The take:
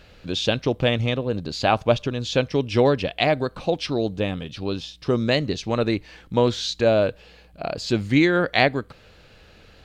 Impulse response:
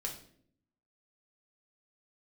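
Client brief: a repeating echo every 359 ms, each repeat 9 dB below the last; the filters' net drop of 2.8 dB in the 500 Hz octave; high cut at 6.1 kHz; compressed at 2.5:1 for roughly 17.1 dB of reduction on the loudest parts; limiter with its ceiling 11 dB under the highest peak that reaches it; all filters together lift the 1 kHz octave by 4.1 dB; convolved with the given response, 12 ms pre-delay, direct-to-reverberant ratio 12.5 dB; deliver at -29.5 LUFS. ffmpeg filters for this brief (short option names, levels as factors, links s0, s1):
-filter_complex "[0:a]lowpass=6100,equalizer=f=500:t=o:g=-6,equalizer=f=1000:t=o:g=8.5,acompressor=threshold=0.0112:ratio=2.5,alimiter=level_in=1.58:limit=0.0631:level=0:latency=1,volume=0.631,aecho=1:1:359|718|1077|1436:0.355|0.124|0.0435|0.0152,asplit=2[s0][s1];[1:a]atrim=start_sample=2205,adelay=12[s2];[s1][s2]afir=irnorm=-1:irlink=0,volume=0.224[s3];[s0][s3]amix=inputs=2:normalize=0,volume=3.16"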